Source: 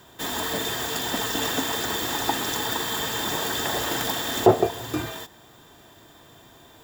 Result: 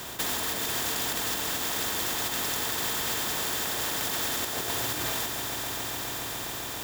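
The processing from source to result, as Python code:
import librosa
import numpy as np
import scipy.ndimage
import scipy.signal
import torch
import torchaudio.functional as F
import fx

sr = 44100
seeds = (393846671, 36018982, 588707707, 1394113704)

y = fx.over_compress(x, sr, threshold_db=-32.0, ratio=-1.0)
y = fx.echo_swell(y, sr, ms=138, loudest=5, wet_db=-13.5)
y = fx.spectral_comp(y, sr, ratio=2.0)
y = y * librosa.db_to_amplitude(2.0)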